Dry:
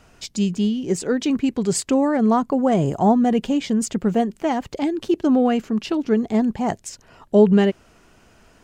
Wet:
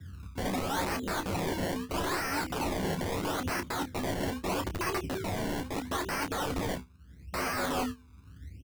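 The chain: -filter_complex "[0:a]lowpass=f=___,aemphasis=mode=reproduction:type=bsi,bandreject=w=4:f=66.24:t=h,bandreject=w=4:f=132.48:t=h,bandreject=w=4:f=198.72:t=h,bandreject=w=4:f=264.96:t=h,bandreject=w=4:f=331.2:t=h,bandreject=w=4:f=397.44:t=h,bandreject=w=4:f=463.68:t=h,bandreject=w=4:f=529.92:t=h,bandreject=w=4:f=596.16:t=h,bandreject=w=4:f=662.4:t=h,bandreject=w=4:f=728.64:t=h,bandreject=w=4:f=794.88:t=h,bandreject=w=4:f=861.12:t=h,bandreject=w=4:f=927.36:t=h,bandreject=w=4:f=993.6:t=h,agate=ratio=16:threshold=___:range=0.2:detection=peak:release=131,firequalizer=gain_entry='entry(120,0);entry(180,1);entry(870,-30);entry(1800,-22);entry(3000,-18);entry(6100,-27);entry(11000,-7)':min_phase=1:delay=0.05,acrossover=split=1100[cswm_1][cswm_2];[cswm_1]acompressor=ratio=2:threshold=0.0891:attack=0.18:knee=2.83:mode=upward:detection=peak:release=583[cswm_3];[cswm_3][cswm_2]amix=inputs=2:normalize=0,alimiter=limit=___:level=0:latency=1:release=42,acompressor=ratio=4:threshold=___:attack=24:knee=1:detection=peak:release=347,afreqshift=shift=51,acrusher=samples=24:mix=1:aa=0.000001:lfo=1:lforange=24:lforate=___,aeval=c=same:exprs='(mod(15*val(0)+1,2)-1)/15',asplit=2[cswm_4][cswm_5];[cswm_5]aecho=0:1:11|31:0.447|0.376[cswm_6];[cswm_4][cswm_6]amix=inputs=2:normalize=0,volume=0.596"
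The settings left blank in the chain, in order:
6600, 0.0224, 0.282, 0.1, 0.77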